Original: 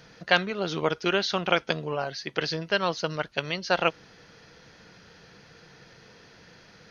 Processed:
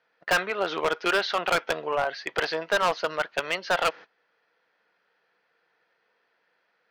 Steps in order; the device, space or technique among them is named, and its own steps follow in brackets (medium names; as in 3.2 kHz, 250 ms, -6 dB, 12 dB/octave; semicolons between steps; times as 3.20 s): 2.25–2.94 s: dynamic bell 790 Hz, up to +6 dB, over -40 dBFS, Q 1.5; walkie-talkie (band-pass 590–2400 Hz; hard clipper -26 dBFS, distortion -5 dB; gate -48 dBFS, range -22 dB); trim +8 dB